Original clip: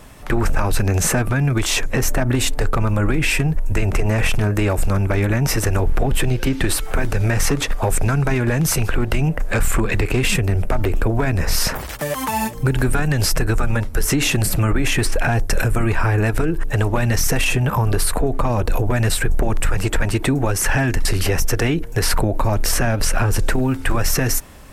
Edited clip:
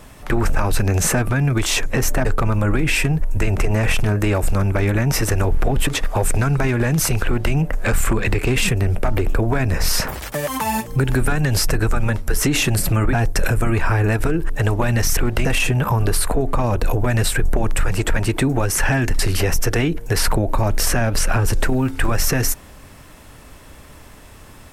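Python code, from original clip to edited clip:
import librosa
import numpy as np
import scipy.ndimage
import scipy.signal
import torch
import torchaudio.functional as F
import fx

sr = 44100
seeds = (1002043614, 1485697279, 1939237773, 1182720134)

y = fx.edit(x, sr, fx.cut(start_s=2.25, length_s=0.35),
    fx.cut(start_s=6.22, length_s=1.32),
    fx.duplicate(start_s=8.92, length_s=0.28, to_s=17.31),
    fx.cut(start_s=14.8, length_s=0.47), tone=tone)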